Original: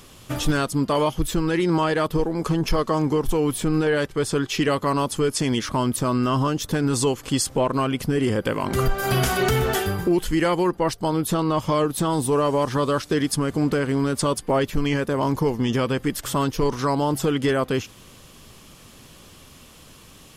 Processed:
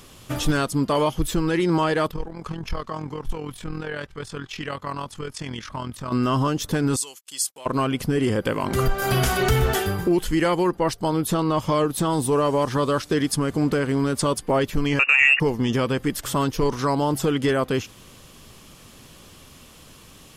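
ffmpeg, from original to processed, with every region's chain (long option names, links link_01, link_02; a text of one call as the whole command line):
ffmpeg -i in.wav -filter_complex "[0:a]asettb=1/sr,asplit=3[link_01][link_02][link_03];[link_01]atrim=end=2.114[link_04];[link_02]atrim=start=2.11:end=6.12,asetpts=PTS-STARTPTS,afade=type=in:duration=0.004:curve=qsin,afade=type=out:start_time=4.006:duration=0.004:curve=qsin,equalizer=frequency=340:width=0.57:gain=-10.5,tremolo=f=42:d=0.667,lowpass=frequency=2600:poles=1[link_05];[link_03]atrim=start=6.116[link_06];[link_04][link_05]acrossfade=duration=0.004:curve1=hsin:curve2=qsin[link_07];[link_07][link_06]acrossfade=duration=0.004:curve1=qsin:curve2=hsin,asettb=1/sr,asplit=3[link_08][link_09][link_10];[link_08]atrim=end=6.964[link_11];[link_09]atrim=start=6.96:end=7.66,asetpts=PTS-STARTPTS,afade=type=in:duration=0.004:curve=qsin,afade=type=out:start_time=0.696:duration=0.004:curve=qsin,agate=range=-40dB:threshold=-35dB:ratio=16:release=100:detection=peak,aderivative[link_12];[link_10]atrim=start=7.656[link_13];[link_11][link_12]acrossfade=duration=0.004:curve1=hsin:curve2=qsin[link_14];[link_14][link_13]acrossfade=duration=0.004:curve1=qsin:curve2=hsin,asettb=1/sr,asplit=3[link_15][link_16][link_17];[link_15]atrim=end=9.024[link_18];[link_16]atrim=start=9.02:end=9.73,asetpts=PTS-STARTPTS,afade=type=in:duration=0.004:curve=qsin,afade=type=out:start_time=0.706:duration=0.004:curve=qsin,asubboost=boost=9:cutoff=120,acompressor=mode=upward:threshold=-21dB:ratio=2.5:attack=3.2:release=140:knee=2.83:detection=peak[link_19];[link_17]atrim=start=9.726[link_20];[link_18][link_19]acrossfade=duration=0.004:curve1=hsin:curve2=qsin[link_21];[link_21][link_20]acrossfade=duration=0.004:curve1=qsin:curve2=hsin,asettb=1/sr,asplit=3[link_22][link_23][link_24];[link_22]atrim=end=14.994[link_25];[link_23]atrim=start=14.99:end=15.4,asetpts=PTS-STARTPTS,afade=type=in:duration=0.004:curve=qsin,afade=type=out:start_time=0.406:duration=0.004:curve=qsin,lowpass=frequency=2500:width_type=q:width=0.5098,lowpass=frequency=2500:width_type=q:width=0.6013,lowpass=frequency=2500:width_type=q:width=0.9,lowpass=frequency=2500:width_type=q:width=2.563,afreqshift=-2900,acontrast=61[link_26];[link_24]atrim=start=15.396[link_27];[link_25][link_26]acrossfade=duration=0.004:curve1=hsin:curve2=qsin[link_28];[link_28][link_27]acrossfade=duration=0.004:curve1=qsin:curve2=hsin" out.wav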